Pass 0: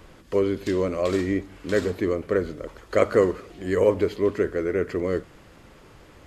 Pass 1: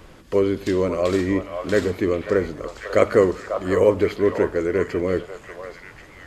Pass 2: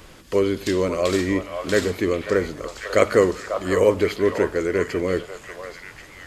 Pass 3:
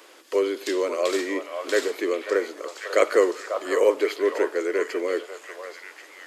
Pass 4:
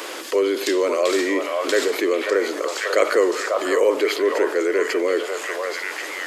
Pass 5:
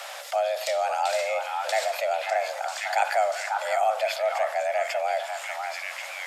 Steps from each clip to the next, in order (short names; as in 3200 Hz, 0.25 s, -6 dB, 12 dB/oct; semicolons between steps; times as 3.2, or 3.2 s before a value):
delay with a stepping band-pass 0.543 s, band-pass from 870 Hz, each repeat 1.4 oct, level -3 dB; gain +3 dB
high shelf 2300 Hz +8.5 dB; gain -1 dB
steep high-pass 320 Hz 36 dB/oct; gain -2 dB
fast leveller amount 50%
frequency shift +240 Hz; gain -6 dB